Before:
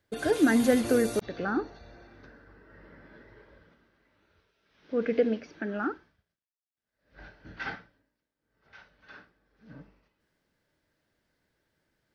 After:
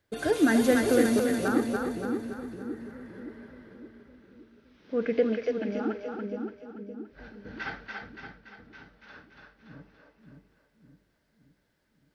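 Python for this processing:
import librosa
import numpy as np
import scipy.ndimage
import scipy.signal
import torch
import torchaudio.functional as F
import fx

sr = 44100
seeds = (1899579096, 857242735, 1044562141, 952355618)

y = fx.band_shelf(x, sr, hz=1400.0, db=-9.5, octaves=1.1, at=(5.48, 5.91))
y = fx.echo_split(y, sr, split_hz=400.0, low_ms=567, high_ms=286, feedback_pct=52, wet_db=-3.5)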